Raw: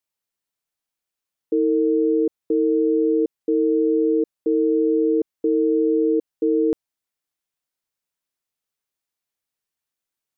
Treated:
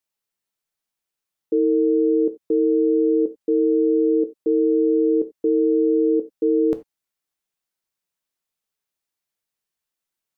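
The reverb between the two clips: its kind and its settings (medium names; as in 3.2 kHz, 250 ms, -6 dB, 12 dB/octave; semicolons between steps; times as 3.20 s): gated-style reverb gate 110 ms falling, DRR 8.5 dB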